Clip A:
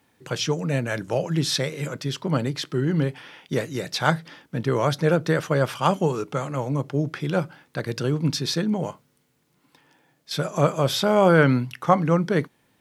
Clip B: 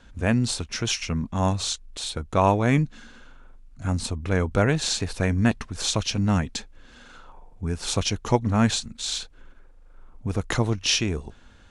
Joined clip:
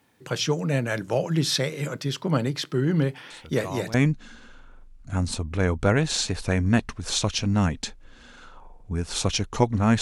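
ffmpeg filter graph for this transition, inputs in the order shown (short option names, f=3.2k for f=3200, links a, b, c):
-filter_complex "[1:a]asplit=2[a][b];[0:a]apad=whole_dur=10.01,atrim=end=10.01,atrim=end=3.942[c];[b]atrim=start=2.658:end=8.73[d];[a]atrim=start=2.02:end=2.66,asetpts=PTS-STARTPTS,volume=-15.5dB,afade=t=in:d=0.004:c=hsin,afade=t=out:st=0.636:d=0.004:c=hsin,adelay=3300[e];[c][d]acrossfade=d=0.004:c1=hsin:c2=hsin[f];[f][e]amix=inputs=2:normalize=0"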